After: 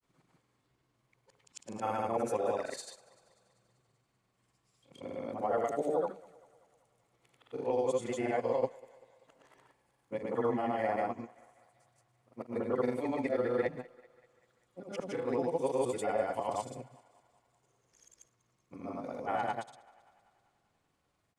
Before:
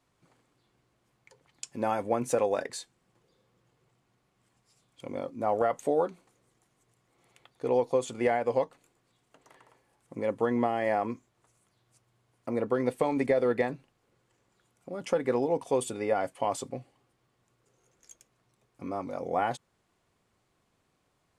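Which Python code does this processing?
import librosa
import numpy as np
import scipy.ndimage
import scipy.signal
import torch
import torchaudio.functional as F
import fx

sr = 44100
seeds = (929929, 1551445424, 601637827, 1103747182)

y = fx.frame_reverse(x, sr, frame_ms=198.0)
y = fx.granulator(y, sr, seeds[0], grain_ms=100.0, per_s=20.0, spray_ms=100.0, spread_st=0)
y = fx.echo_thinned(y, sr, ms=194, feedback_pct=63, hz=380.0, wet_db=-21.5)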